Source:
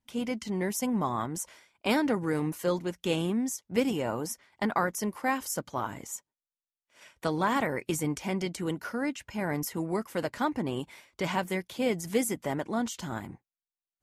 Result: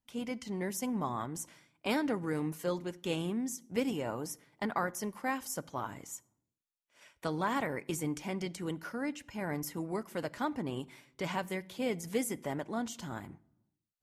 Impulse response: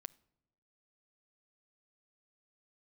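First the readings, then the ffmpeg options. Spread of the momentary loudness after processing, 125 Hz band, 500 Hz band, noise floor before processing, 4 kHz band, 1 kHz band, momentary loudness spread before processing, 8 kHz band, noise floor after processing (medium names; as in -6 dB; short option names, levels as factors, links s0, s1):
8 LU, -5.0 dB, -5.5 dB, under -85 dBFS, -5.5 dB, -5.5 dB, 8 LU, -5.5 dB, under -85 dBFS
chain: -filter_complex "[1:a]atrim=start_sample=2205[s0];[0:a][s0]afir=irnorm=-1:irlink=0"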